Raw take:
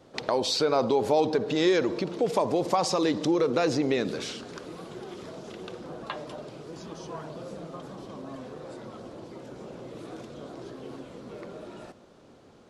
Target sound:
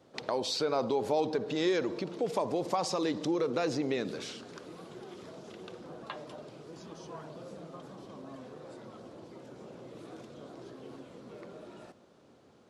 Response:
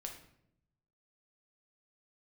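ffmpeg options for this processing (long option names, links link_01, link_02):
-af "highpass=77,volume=-6dB"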